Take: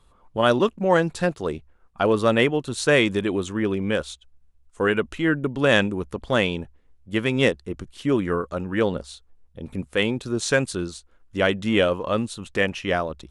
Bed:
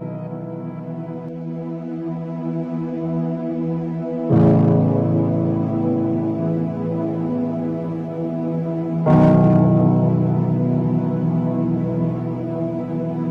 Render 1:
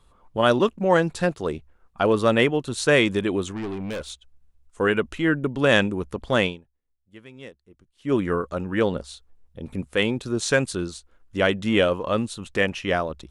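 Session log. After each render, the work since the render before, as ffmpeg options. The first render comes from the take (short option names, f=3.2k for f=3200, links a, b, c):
-filter_complex "[0:a]asettb=1/sr,asplit=3[a][b][c];[a]atrim=end=3.514[d];[b]atrim=start=3.51:end=4.1,asetpts=PTS-STARTPTS,afade=t=in:d=0.004:c=qsin,afade=t=out:st=0.586:d=0.004:c=qsin,aeval=exprs='(tanh(22.4*val(0)+0.25)-tanh(0.25))/22.4':c=same[e];[c]atrim=start=4.096[f];[d][e]acrossfade=d=0.004:c1=hsin:c2=qsin[g];[g][f]acrossfade=d=0.004:c1=qsin:c2=hsin,asplit=3[h][i][j];[h]atrim=end=6.63,asetpts=PTS-STARTPTS,afade=t=out:st=6.46:d=0.17:c=qua:silence=0.0794328[k];[i]atrim=start=6.63:end=7.96,asetpts=PTS-STARTPTS,volume=-22dB[l];[j]atrim=start=7.96,asetpts=PTS-STARTPTS,afade=t=in:d=0.17:c=qua:silence=0.0794328[m];[k][l][m]concat=n=3:v=0:a=1"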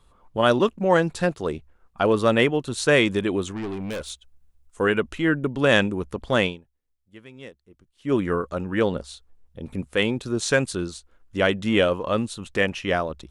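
-filter_complex "[0:a]asettb=1/sr,asplit=3[a][b][c];[a]atrim=end=3.724[d];[b]atrim=start=3.72:end=4.85,asetpts=PTS-STARTPTS,afade=t=in:d=0.004:c=qsin,afade=t=out:st=1.126:d=0.004:c=qsin,highshelf=f=8.9k:g=7[e];[c]atrim=start=4.846[f];[d][e]acrossfade=d=0.004:c1=hsin:c2=qsin[g];[g][f]acrossfade=d=0.004:c1=qsin:c2=hsin"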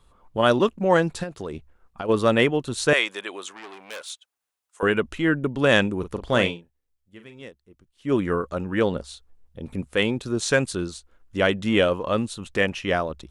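-filter_complex "[0:a]asplit=3[a][b][c];[a]afade=t=out:st=1.22:d=0.02[d];[b]acompressor=threshold=-27dB:ratio=8:attack=3.2:release=140:knee=1:detection=peak,afade=t=in:st=1.22:d=0.02,afade=t=out:st=2.08:d=0.02[e];[c]afade=t=in:st=2.08:d=0.02[f];[d][e][f]amix=inputs=3:normalize=0,asettb=1/sr,asplit=3[g][h][i];[g]atrim=end=2.934[j];[h]atrim=start=2.93:end=4.83,asetpts=PTS-STARTPTS,afade=t=in:d=0.004:c=qsin,afade=t=out:st=1.896:d=0.004:c=qsin,highpass=780[k];[i]atrim=start=4.826[l];[j][k]acrossfade=d=0.004:c1=hsin:c2=qsin[m];[m][l]acrossfade=d=0.004:c1=qsin:c2=hsin,asettb=1/sr,asplit=3[n][o][p];[n]atrim=end=5.994[q];[o]atrim=start=5.99:end=7.42,asetpts=PTS-STARTPTS,afade=t=in:d=0.004:c=qsin,afade=t=out:st=1.426:d=0.004:c=qsin,asplit=2[r][s];[s]adelay=41,volume=-9dB[t];[r][t]amix=inputs=2:normalize=0,atrim=end_sample=63063[u];[p]atrim=start=7.416[v];[q][u]acrossfade=d=0.004:c1=hsin:c2=qsin[w];[w][v]acrossfade=d=0.004:c1=qsin:c2=hsin"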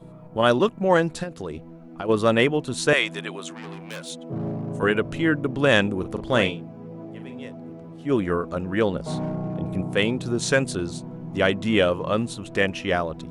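-filter_complex "[1:a]volume=-16dB[a];[0:a][a]amix=inputs=2:normalize=0"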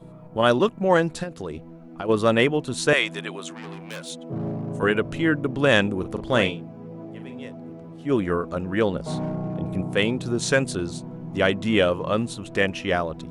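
-af anull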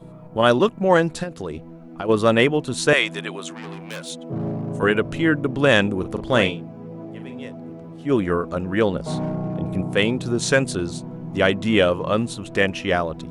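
-af "volume=2.5dB,alimiter=limit=-2dB:level=0:latency=1"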